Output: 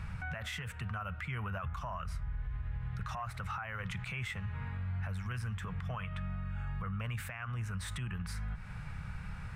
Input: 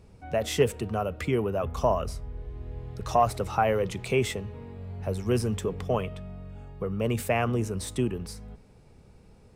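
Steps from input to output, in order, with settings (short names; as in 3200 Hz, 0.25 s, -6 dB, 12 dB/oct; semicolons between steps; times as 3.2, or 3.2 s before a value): EQ curve 170 Hz 0 dB, 240 Hz -16 dB, 390 Hz -24 dB, 1500 Hz +10 dB, 5100 Hz -9 dB; compressor 6:1, threshold -48 dBFS, peak gain reduction 26.5 dB; limiter -44 dBFS, peak gain reduction 12 dB; gain +13.5 dB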